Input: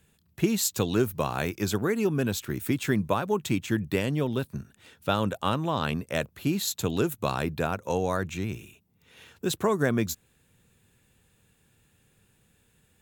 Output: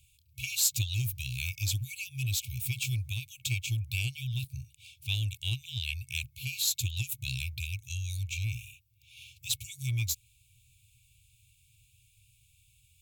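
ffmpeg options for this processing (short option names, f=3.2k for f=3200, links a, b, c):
-filter_complex "[0:a]afftfilt=real='re*(1-between(b*sr/4096,130,2200))':imag='im*(1-between(b*sr/4096,130,2200))':win_size=4096:overlap=0.75,asplit=2[a][b];[b]volume=31dB,asoftclip=hard,volume=-31dB,volume=-8.5dB[c];[a][c]amix=inputs=2:normalize=0"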